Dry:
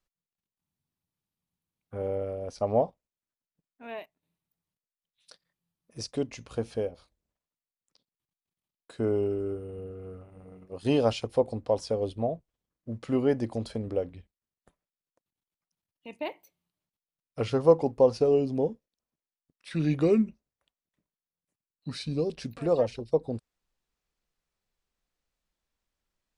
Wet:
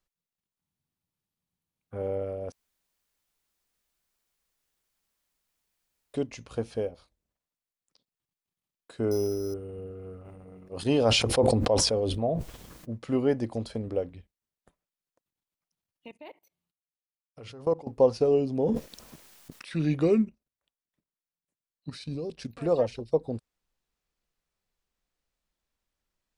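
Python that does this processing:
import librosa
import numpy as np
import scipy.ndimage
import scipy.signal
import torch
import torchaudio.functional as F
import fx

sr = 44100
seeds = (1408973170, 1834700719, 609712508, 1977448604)

y = fx.resample_bad(x, sr, factor=8, down='filtered', up='hold', at=(9.11, 9.54))
y = fx.sustainer(y, sr, db_per_s=27.0, at=(10.24, 12.93), fade=0.02)
y = fx.level_steps(y, sr, step_db=22, at=(16.08, 17.87))
y = fx.sustainer(y, sr, db_per_s=23.0, at=(18.47, 19.74))
y = fx.level_steps(y, sr, step_db=11, at=(20.24, 22.56), fade=0.02)
y = fx.edit(y, sr, fx.room_tone_fill(start_s=2.52, length_s=3.62), tone=tone)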